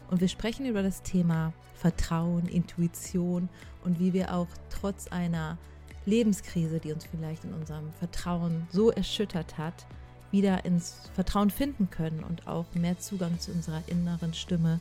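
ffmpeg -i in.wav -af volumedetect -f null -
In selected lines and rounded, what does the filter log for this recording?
mean_volume: -29.8 dB
max_volume: -11.7 dB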